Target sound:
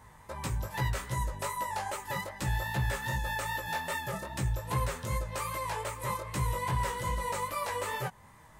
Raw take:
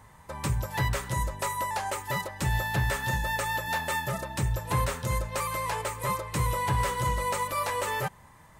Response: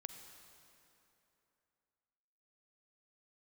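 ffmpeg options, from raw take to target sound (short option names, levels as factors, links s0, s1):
-filter_complex "[0:a]asplit=2[s0][s1];[s1]acompressor=threshold=0.0126:ratio=6,volume=0.841[s2];[s0][s2]amix=inputs=2:normalize=0,flanger=delay=15:depth=5.7:speed=2.5,volume=0.668"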